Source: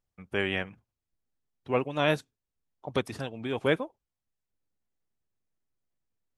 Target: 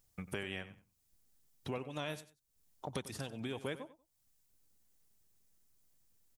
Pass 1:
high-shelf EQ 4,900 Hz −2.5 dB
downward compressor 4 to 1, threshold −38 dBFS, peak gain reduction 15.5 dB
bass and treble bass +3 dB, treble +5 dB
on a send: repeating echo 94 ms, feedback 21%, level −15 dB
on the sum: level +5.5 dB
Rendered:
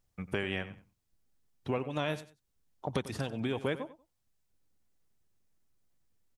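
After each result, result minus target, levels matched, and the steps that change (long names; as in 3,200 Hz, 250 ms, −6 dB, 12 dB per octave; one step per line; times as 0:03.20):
8,000 Hz band −8.0 dB; downward compressor: peak gain reduction −8 dB
change: high-shelf EQ 4,900 Hz +9.5 dB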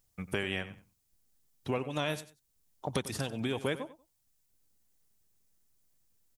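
downward compressor: peak gain reduction −7.5 dB
change: downward compressor 4 to 1, threshold −48 dBFS, peak gain reduction 23.5 dB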